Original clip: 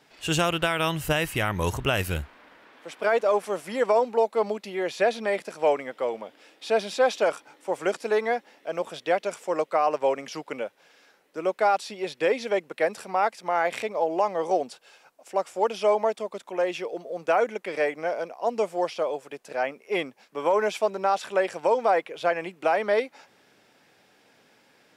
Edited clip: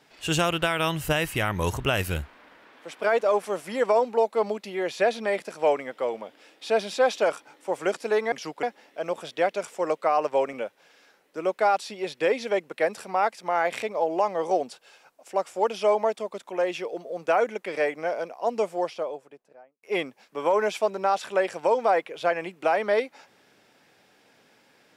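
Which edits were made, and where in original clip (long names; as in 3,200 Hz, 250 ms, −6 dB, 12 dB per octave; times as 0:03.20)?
0:10.22–0:10.53: move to 0:08.32
0:18.56–0:19.83: fade out and dull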